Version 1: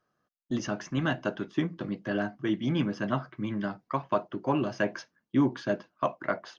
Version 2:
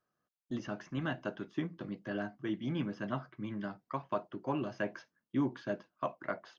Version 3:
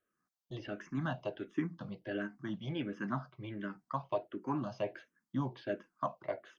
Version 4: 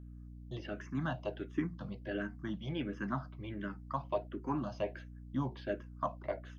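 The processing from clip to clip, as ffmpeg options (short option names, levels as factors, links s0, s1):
-filter_complex "[0:a]acrossover=split=3900[s0][s1];[s1]acompressor=threshold=0.002:ratio=4:attack=1:release=60[s2];[s0][s2]amix=inputs=2:normalize=0,volume=0.422"
-filter_complex "[0:a]asplit=2[s0][s1];[s1]afreqshift=-1.4[s2];[s0][s2]amix=inputs=2:normalize=1,volume=1.26"
-af "aeval=exprs='val(0)+0.00398*(sin(2*PI*60*n/s)+sin(2*PI*2*60*n/s)/2+sin(2*PI*3*60*n/s)/3+sin(2*PI*4*60*n/s)/4+sin(2*PI*5*60*n/s)/5)':c=same"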